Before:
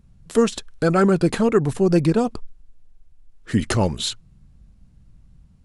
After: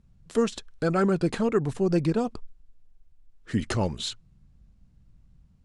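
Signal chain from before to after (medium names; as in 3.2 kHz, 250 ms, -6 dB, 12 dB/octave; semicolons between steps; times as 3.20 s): low-pass 8.5 kHz 12 dB/octave; trim -6.5 dB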